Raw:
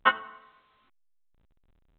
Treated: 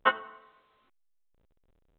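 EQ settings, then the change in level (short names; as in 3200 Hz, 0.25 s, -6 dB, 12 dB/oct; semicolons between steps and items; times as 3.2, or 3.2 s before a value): bell 480 Hz +7.5 dB 1.1 oct; -3.5 dB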